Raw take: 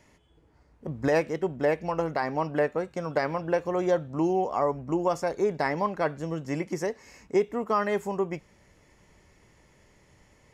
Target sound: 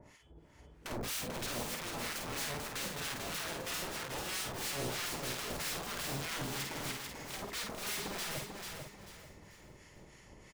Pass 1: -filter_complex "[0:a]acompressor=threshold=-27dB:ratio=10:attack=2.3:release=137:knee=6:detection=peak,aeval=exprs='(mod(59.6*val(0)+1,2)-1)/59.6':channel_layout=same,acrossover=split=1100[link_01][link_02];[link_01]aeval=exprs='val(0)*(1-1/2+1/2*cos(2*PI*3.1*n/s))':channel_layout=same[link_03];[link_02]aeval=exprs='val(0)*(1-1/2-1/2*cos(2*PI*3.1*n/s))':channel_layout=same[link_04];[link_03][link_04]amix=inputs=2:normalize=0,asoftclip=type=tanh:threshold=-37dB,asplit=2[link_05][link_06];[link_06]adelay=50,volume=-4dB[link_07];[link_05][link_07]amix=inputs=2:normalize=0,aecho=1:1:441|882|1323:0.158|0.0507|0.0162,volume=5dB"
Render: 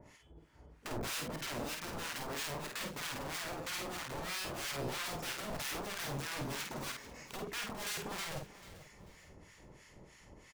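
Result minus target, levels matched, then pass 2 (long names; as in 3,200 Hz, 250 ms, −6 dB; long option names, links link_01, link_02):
echo-to-direct −11 dB; downward compressor: peak gain reduction +6 dB
-filter_complex "[0:a]acompressor=threshold=-20dB:ratio=10:attack=2.3:release=137:knee=6:detection=peak,aeval=exprs='(mod(59.6*val(0)+1,2)-1)/59.6':channel_layout=same,acrossover=split=1100[link_01][link_02];[link_01]aeval=exprs='val(0)*(1-1/2+1/2*cos(2*PI*3.1*n/s))':channel_layout=same[link_03];[link_02]aeval=exprs='val(0)*(1-1/2-1/2*cos(2*PI*3.1*n/s))':channel_layout=same[link_04];[link_03][link_04]amix=inputs=2:normalize=0,asoftclip=type=tanh:threshold=-37dB,asplit=2[link_05][link_06];[link_06]adelay=50,volume=-4dB[link_07];[link_05][link_07]amix=inputs=2:normalize=0,aecho=1:1:441|882|1323|1764:0.562|0.18|0.0576|0.0184,volume=5dB"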